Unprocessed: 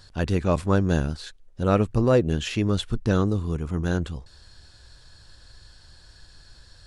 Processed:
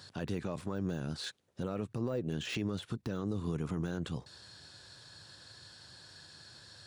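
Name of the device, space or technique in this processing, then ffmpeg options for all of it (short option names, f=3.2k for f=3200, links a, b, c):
broadcast voice chain: -af "highpass=f=110:w=0.5412,highpass=f=110:w=1.3066,deesser=1,acompressor=threshold=-28dB:ratio=5,equalizer=f=3.7k:t=o:w=0.23:g=2,alimiter=level_in=1.5dB:limit=-24dB:level=0:latency=1:release=35,volume=-1.5dB"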